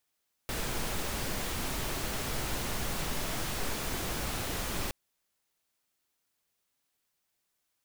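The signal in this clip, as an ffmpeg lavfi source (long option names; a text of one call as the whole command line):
ffmpeg -f lavfi -i "anoisesrc=color=pink:amplitude=0.108:duration=4.42:sample_rate=44100:seed=1" out.wav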